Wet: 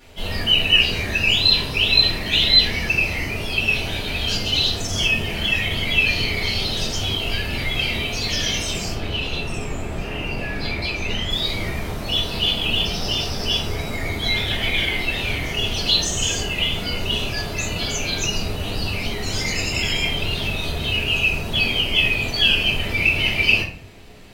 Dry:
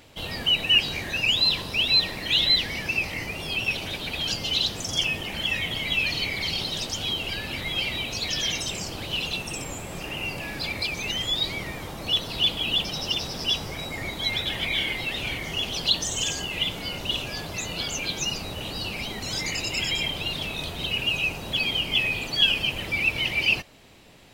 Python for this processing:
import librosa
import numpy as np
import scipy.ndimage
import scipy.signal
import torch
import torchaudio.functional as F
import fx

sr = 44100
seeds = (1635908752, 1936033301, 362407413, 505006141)

y = fx.lowpass(x, sr, hz=3100.0, slope=6, at=(8.92, 11.3))
y = fx.room_shoebox(y, sr, seeds[0], volume_m3=50.0, walls='mixed', distance_m=1.8)
y = y * 10.0 ** (-4.0 / 20.0)